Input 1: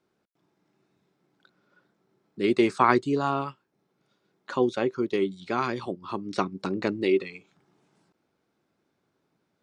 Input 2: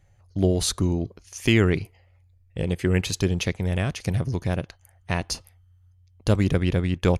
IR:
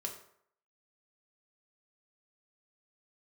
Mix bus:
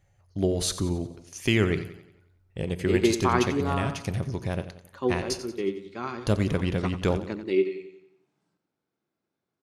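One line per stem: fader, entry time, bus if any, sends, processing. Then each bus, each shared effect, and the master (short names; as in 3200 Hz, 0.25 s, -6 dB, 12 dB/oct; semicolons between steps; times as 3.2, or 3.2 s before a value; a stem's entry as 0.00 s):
+0.5 dB, 0.45 s, no send, echo send -10.5 dB, harmonic-percussive split percussive -5 dB; upward expander 1.5:1, over -36 dBFS
-5.0 dB, 0.00 s, send -9 dB, echo send -11.5 dB, low shelf 73 Hz -6.5 dB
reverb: on, RT60 0.65 s, pre-delay 3 ms
echo: feedback echo 90 ms, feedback 47%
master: dry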